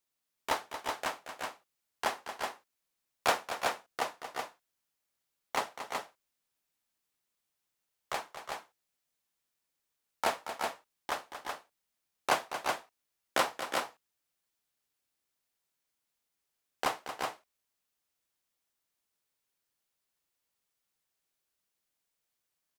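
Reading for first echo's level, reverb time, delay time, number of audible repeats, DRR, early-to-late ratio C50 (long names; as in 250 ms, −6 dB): −10.5 dB, no reverb audible, 229 ms, 2, no reverb audible, no reverb audible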